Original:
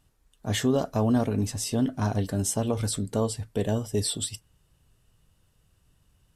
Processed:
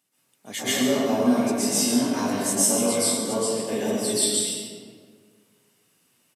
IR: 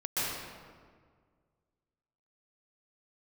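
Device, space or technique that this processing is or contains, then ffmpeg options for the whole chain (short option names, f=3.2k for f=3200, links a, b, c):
PA in a hall: -filter_complex "[0:a]highpass=f=190:w=0.5412,highpass=f=190:w=1.3066,equalizer=f=2.2k:t=o:w=0.32:g=7.5,highshelf=f=4.2k:g=11,aecho=1:1:141:0.335[a];[1:a]atrim=start_sample=2205[b];[a][b]afir=irnorm=-1:irlink=0,asettb=1/sr,asplit=3[c][d][e];[c]atrim=end=1.694[f];[d]atrim=start=1.69:end=3.17,asetpts=PTS-STARTPTS,afade=t=in:d=0.004:c=qsin,afade=t=out:st=1.476:d=0.004:c=qsin,asplit=2[g][h];[h]adelay=21,volume=-3dB[i];[g][i]amix=inputs=2:normalize=0,atrim=end_sample=65268[j];[e]atrim=start=3.166[k];[f][j]acrossfade=d=0.004:c1=hsin:c2=qsin[l];[l][k]acrossfade=d=0.004:c1=qsin:c2=hsin,volume=-5.5dB"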